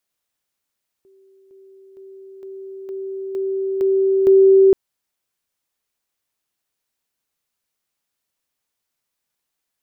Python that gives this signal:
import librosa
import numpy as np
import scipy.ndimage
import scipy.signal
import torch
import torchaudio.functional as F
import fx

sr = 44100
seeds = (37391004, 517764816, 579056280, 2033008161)

y = fx.level_ladder(sr, hz=386.0, from_db=-49.5, step_db=6.0, steps=8, dwell_s=0.46, gap_s=0.0)